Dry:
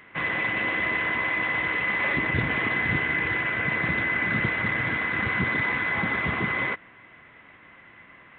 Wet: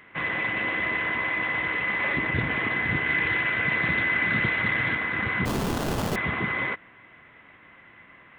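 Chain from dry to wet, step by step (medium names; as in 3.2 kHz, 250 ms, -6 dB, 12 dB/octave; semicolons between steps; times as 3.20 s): 3.06–4.95 s: treble shelf 3.3 kHz +9.5 dB; 5.45–6.16 s: sample-rate reducer 2.2 kHz, jitter 20%; trim -1 dB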